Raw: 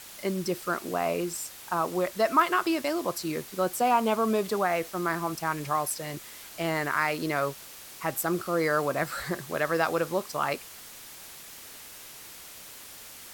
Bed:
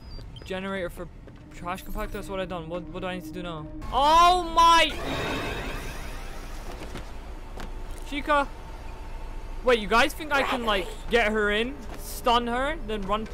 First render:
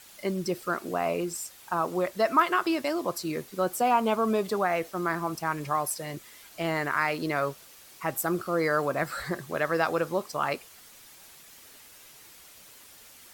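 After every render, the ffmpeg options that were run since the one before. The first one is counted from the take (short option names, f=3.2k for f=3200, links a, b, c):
-af "afftdn=nr=7:nf=-46"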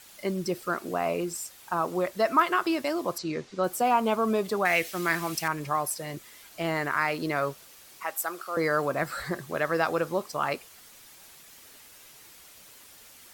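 -filter_complex "[0:a]asettb=1/sr,asplit=3[a][b][c];[a]atrim=end=3.184[d];[b]atrim=start=3.18:end=3.64,asetpts=PTS-STARTPTS,afade=t=in:d=0.004:c=qsin,afade=t=out:st=0.456:d=0.004:c=qsin,lowpass=f=6.6k:w=0.5412,lowpass=f=6.6k:w=1.3066[e];[c]atrim=start=3.636[f];[d][e]acrossfade=d=0.004:c1=hsin:c2=qsin[g];[g][f]acrossfade=d=0.004:c1=qsin:c2=hsin,asettb=1/sr,asplit=3[h][i][j];[h]atrim=end=4.654[k];[i]atrim=start=4.65:end=5.48,asetpts=PTS-STARTPTS,afade=t=in:d=0.004:c=qsin,afade=t=out:st=0.826:d=0.004:c=qsin,highshelf=f=1.6k:t=q:w=1.5:g=9[l];[j]atrim=start=5.476[m];[k][l]acrossfade=d=0.004:c1=hsin:c2=qsin[n];[n][m]acrossfade=d=0.004:c1=qsin:c2=hsin,asettb=1/sr,asplit=3[o][p][q];[o]atrim=end=8.034[r];[p]atrim=start=8.03:end=8.57,asetpts=PTS-STARTPTS,afade=t=in:d=0.004:c=qsin,afade=t=out:st=0.536:d=0.004:c=qsin,highpass=710[s];[q]atrim=start=8.566[t];[r][s]acrossfade=d=0.004:c1=hsin:c2=qsin[u];[u][t]acrossfade=d=0.004:c1=qsin:c2=hsin"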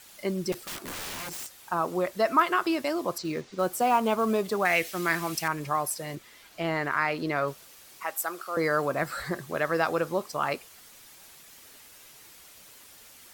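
-filter_complex "[0:a]asettb=1/sr,asplit=3[a][b][c];[a]atrim=end=0.524[d];[b]atrim=start=0.52:end=1.61,asetpts=PTS-STARTPTS,afade=t=in:d=0.004:c=qsin,afade=t=out:st=1.086:d=0.004:c=qsin,aeval=exprs='(mod(39.8*val(0)+1,2)-1)/39.8':c=same[e];[c]atrim=start=1.606[f];[d][e]acrossfade=d=0.004:c1=hsin:c2=qsin[g];[g][f]acrossfade=d=0.004:c1=qsin:c2=hsin,asettb=1/sr,asplit=3[h][i][j];[h]atrim=end=3.174[k];[i]atrim=start=3.17:end=4.67,asetpts=PTS-STARTPTS,afade=t=in:d=0.004:c=qsin,afade=t=out:st=1.496:d=0.004:c=qsin,acrusher=bits=6:mode=log:mix=0:aa=0.000001[l];[j]atrim=start=4.666[m];[k][l]acrossfade=d=0.004:c1=hsin:c2=qsin[n];[n][m]acrossfade=d=0.004:c1=qsin:c2=hsin,asettb=1/sr,asplit=3[o][p][q];[o]atrim=end=6.154[r];[p]atrim=start=6.15:end=7.48,asetpts=PTS-STARTPTS,afade=t=in:d=0.004:c=qsin,afade=t=out:st=1.326:d=0.004:c=qsin,acrossover=split=5200[s][t];[t]acompressor=threshold=-56dB:ratio=4:attack=1:release=60[u];[s][u]amix=inputs=2:normalize=0[v];[q]atrim=start=7.476[w];[r][v]acrossfade=d=0.004:c1=hsin:c2=qsin[x];[x][w]acrossfade=d=0.004:c1=qsin:c2=hsin"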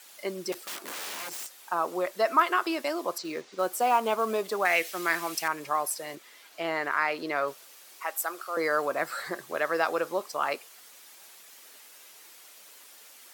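-af "highpass=370"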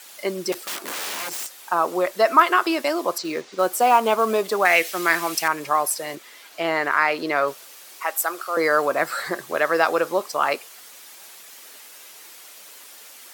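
-af "volume=7.5dB"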